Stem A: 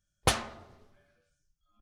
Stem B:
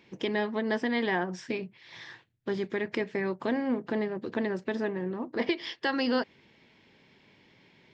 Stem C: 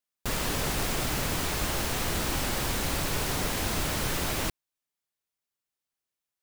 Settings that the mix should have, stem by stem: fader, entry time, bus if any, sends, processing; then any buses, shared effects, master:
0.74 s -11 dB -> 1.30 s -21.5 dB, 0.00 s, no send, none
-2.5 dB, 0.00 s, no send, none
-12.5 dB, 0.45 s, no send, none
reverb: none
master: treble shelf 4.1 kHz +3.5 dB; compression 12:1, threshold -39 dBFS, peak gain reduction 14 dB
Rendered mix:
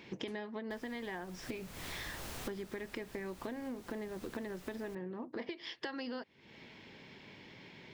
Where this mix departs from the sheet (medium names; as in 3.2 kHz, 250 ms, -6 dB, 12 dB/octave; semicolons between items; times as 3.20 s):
stem A -11.0 dB -> -18.5 dB; stem B -2.5 dB -> +6.0 dB; master: missing treble shelf 4.1 kHz +3.5 dB